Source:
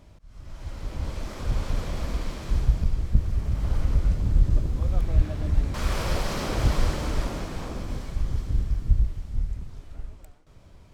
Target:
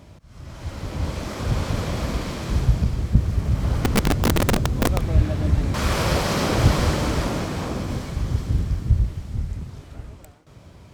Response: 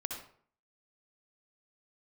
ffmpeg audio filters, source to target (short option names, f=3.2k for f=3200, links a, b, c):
-filter_complex "[0:a]highpass=97,lowshelf=f=130:g=5.5,asettb=1/sr,asplit=3[a][b][c];[a]atrim=end=3.794[d];[b]atrim=start=3.79:end=5.04,asetpts=PTS-STARTPTS,afade=t=in:d=0.004:c=qsin,afade=t=out:st=1.246:d=0.004:c=qsin,aeval=exprs='(mod(10*val(0)+1,2)-1)/10':c=same[e];[c]atrim=start=5.036[f];[d][e]acrossfade=d=0.004:c1=hsin:c2=qsin[g];[g][f]acrossfade=d=0.004:c1=qsin:c2=hsin,volume=7.5dB"